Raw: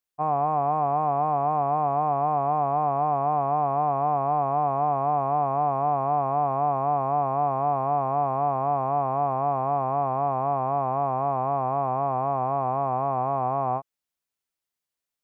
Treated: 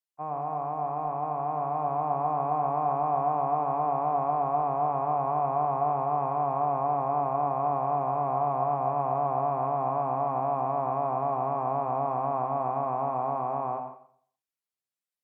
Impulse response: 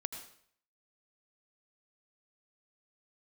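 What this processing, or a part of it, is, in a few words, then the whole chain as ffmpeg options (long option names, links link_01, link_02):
far-field microphone of a smart speaker: -filter_complex "[1:a]atrim=start_sample=2205[link_01];[0:a][link_01]afir=irnorm=-1:irlink=0,highpass=120,dynaudnorm=framelen=210:gausssize=17:maxgain=5dB,volume=-7.5dB" -ar 48000 -c:a libopus -b:a 48k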